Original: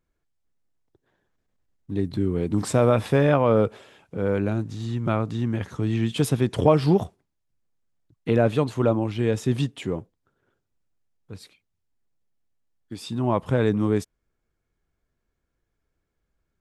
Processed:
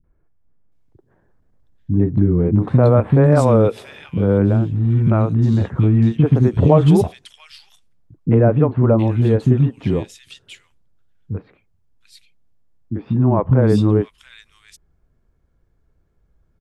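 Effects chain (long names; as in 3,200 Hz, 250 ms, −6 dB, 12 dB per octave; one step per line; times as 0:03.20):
high-shelf EQ 2,900 Hz −9.5 dB
in parallel at +3 dB: downward compressor, threshold −29 dBFS, peak gain reduction 16 dB
on the sum: low-shelf EQ 370 Hz +8 dB
three-band delay without the direct sound lows, mids, highs 40/720 ms, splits 290/2,300 Hz
level +1 dB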